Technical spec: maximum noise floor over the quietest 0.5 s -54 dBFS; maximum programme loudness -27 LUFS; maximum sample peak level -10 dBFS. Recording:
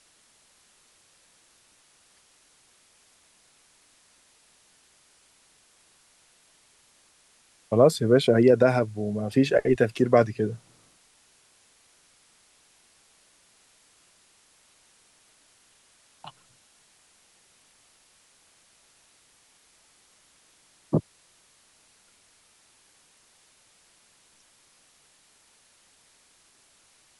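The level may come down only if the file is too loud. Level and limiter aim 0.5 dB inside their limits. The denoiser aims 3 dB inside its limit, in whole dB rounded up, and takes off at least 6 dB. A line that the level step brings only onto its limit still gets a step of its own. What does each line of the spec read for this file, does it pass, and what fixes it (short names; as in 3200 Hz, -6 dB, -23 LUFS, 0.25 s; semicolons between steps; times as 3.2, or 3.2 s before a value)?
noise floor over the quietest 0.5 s -61 dBFS: OK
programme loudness -22.5 LUFS: fail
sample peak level -6.0 dBFS: fail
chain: gain -5 dB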